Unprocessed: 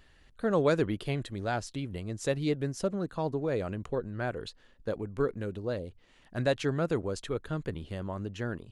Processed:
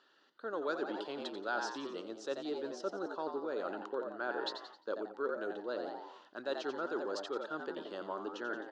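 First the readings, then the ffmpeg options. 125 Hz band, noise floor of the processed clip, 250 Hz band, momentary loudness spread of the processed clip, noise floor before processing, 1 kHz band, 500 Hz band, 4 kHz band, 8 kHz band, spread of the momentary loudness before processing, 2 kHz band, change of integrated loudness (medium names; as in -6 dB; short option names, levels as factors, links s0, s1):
under -25 dB, -68 dBFS, -9.5 dB, 6 LU, -60 dBFS, -1.5 dB, -6.5 dB, -2.5 dB, -9.5 dB, 9 LU, -2.5 dB, -7.0 dB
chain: -filter_complex "[0:a]dynaudnorm=f=140:g=7:m=2.11,equalizer=f=2100:t=o:w=0.89:g=-9,asplit=6[s0][s1][s2][s3][s4][s5];[s1]adelay=88,afreqshift=100,volume=0.335[s6];[s2]adelay=176,afreqshift=200,volume=0.164[s7];[s3]adelay=264,afreqshift=300,volume=0.0804[s8];[s4]adelay=352,afreqshift=400,volume=0.0394[s9];[s5]adelay=440,afreqshift=500,volume=0.0193[s10];[s0][s6][s7][s8][s9][s10]amix=inputs=6:normalize=0,areverse,acompressor=threshold=0.0316:ratio=6,areverse,highpass=f=340:w=0.5412,highpass=f=340:w=1.3066,equalizer=f=480:t=q:w=4:g=-5,equalizer=f=690:t=q:w=4:g=-6,equalizer=f=1400:t=q:w=4:g=8,equalizer=f=2200:t=q:w=4:g=-8,lowpass=f=5200:w=0.5412,lowpass=f=5200:w=1.3066"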